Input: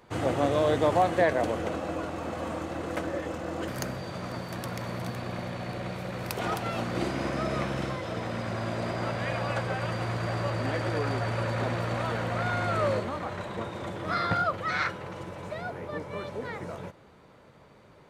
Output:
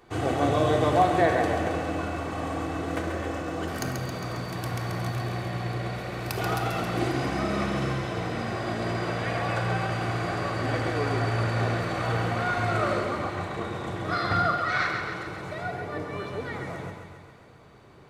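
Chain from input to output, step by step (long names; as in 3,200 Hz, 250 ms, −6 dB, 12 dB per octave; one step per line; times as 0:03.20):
feedback echo with a high-pass in the loop 135 ms, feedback 65%, high-pass 420 Hz, level −6 dB
on a send at −3.5 dB: convolution reverb RT60 0.95 s, pre-delay 3 ms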